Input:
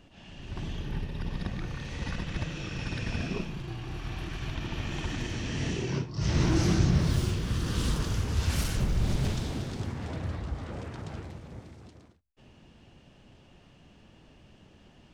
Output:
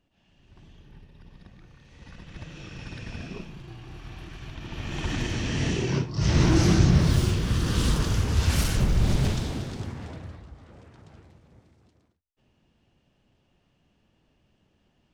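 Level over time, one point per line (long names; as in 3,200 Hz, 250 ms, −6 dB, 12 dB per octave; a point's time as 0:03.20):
0:01.84 −16 dB
0:02.60 −5 dB
0:04.56 −5 dB
0:05.13 +5 dB
0:09.19 +5 dB
0:10.03 −1.5 dB
0:10.51 −11.5 dB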